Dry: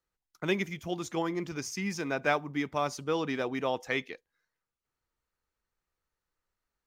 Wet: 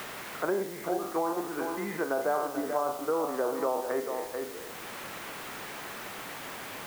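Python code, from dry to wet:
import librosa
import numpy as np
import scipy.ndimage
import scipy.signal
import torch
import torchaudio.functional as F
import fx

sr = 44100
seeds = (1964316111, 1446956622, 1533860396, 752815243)

p1 = fx.spec_trails(x, sr, decay_s=0.69)
p2 = scipy.signal.sosfilt(scipy.signal.butter(2, 410.0, 'highpass', fs=sr, output='sos'), p1)
p3 = fx.env_lowpass_down(p2, sr, base_hz=990.0, full_db=-28.5)
p4 = scipy.signal.sosfilt(scipy.signal.butter(4, 1500.0, 'lowpass', fs=sr, output='sos'), p3)
p5 = fx.level_steps(p4, sr, step_db=18)
p6 = p4 + F.gain(torch.from_numpy(p5), 0.0).numpy()
p7 = fx.dmg_noise_colour(p6, sr, seeds[0], colour='white', level_db=-48.0)
p8 = p7 + fx.echo_single(p7, sr, ms=438, db=-10.0, dry=0)
y = fx.band_squash(p8, sr, depth_pct=70)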